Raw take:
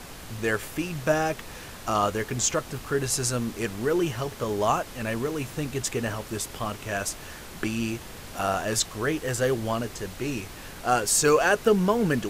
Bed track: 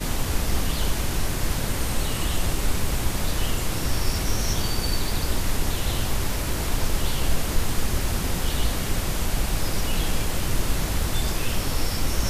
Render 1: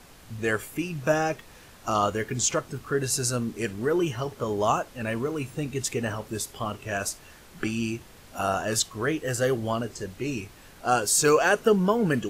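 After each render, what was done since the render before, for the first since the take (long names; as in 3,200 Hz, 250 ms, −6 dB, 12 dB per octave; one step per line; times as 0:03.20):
noise reduction from a noise print 9 dB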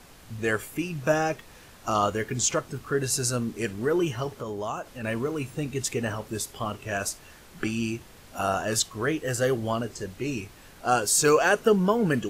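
0:04.41–0:05.04: downward compressor 2 to 1, threshold −34 dBFS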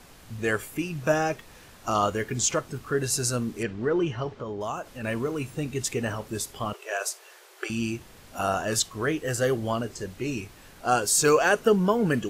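0:03.63–0:04.61: high-frequency loss of the air 150 metres
0:06.73–0:07.70: linear-phase brick-wall high-pass 340 Hz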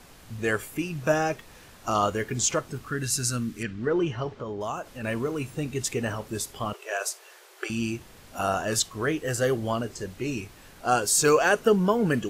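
0:02.88–0:03.87: flat-topped bell 610 Hz −9.5 dB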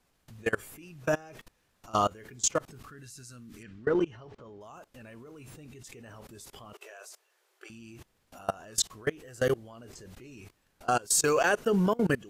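output level in coarse steps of 24 dB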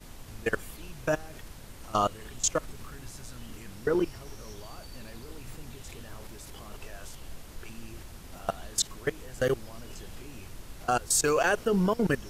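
mix in bed track −21 dB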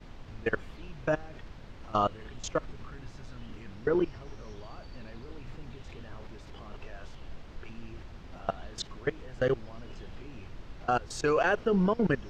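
high-frequency loss of the air 200 metres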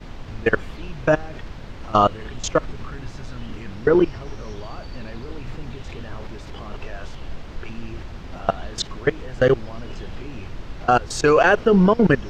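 level +11 dB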